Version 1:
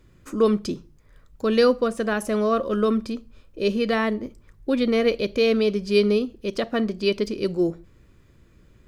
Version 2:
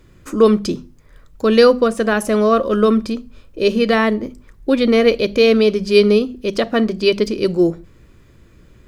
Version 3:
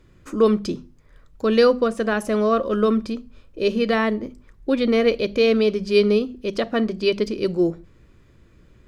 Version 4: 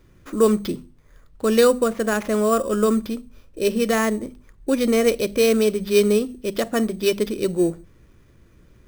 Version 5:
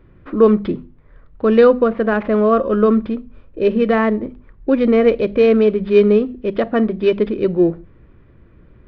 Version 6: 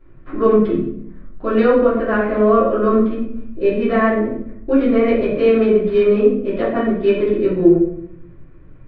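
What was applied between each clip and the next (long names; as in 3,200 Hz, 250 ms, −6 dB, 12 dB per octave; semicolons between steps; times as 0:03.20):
mains-hum notches 50/100/150/200/250 Hz; level +7.5 dB
high-shelf EQ 9,000 Hz −8.5 dB; level −5 dB
sample-rate reduction 8,400 Hz, jitter 0%
Gaussian smoothing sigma 3.2 samples; level +5.5 dB
convolution reverb RT60 0.70 s, pre-delay 3 ms, DRR −10.5 dB; level −10.5 dB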